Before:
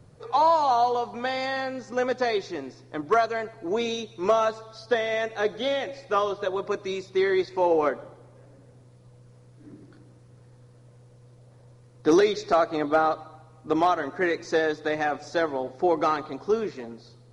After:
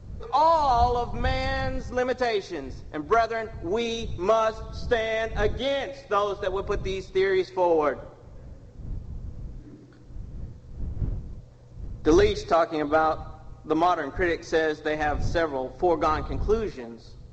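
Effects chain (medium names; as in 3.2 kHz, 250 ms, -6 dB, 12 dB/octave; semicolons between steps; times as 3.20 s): wind noise 82 Hz -35 dBFS; G.722 64 kbps 16 kHz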